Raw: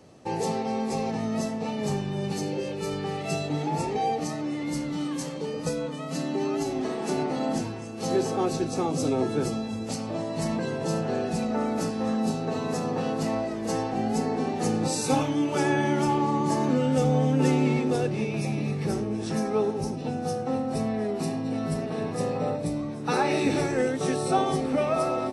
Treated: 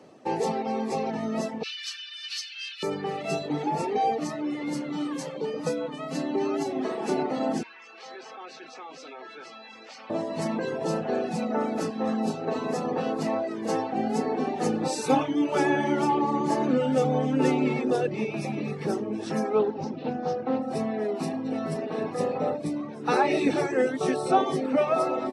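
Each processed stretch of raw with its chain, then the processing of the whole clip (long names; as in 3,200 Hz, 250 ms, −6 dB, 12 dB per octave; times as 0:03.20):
0:01.63–0:02.83: Butterworth high-pass 1,400 Hz 48 dB per octave + flat-topped bell 3,900 Hz +11.5 dB 1.3 octaves
0:07.63–0:10.10: flat-topped band-pass 3,300 Hz, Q 0.74 + spectral tilt −4.5 dB per octave + envelope flattener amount 70%
0:19.59–0:20.62: low-pass filter 5,300 Hz 24 dB per octave + highs frequency-modulated by the lows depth 0.12 ms
whole clip: reverb reduction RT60 0.74 s; high-pass filter 220 Hz 12 dB per octave; high-shelf EQ 4,700 Hz −10.5 dB; level +3.5 dB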